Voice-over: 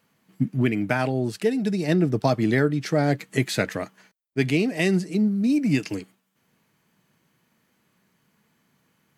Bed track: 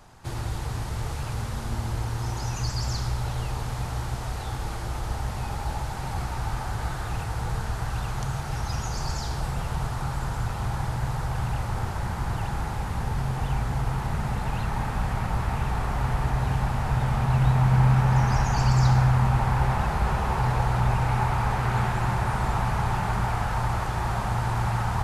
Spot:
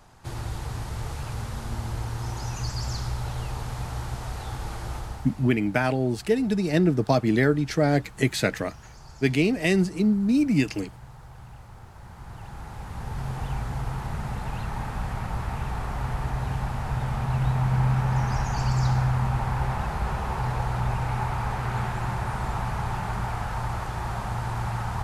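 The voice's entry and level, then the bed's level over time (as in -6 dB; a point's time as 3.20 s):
4.85 s, 0.0 dB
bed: 4.95 s -2 dB
5.61 s -17 dB
11.87 s -17 dB
13.29 s -3.5 dB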